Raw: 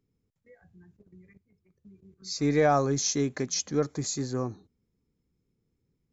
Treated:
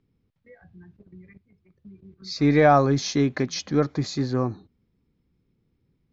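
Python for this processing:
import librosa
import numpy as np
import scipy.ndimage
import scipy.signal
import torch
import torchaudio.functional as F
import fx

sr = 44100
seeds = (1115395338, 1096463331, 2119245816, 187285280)

y = scipy.signal.sosfilt(scipy.signal.butter(4, 4400.0, 'lowpass', fs=sr, output='sos'), x)
y = fx.peak_eq(y, sr, hz=440.0, db=-4.0, octaves=0.33)
y = y * 10.0 ** (7.0 / 20.0)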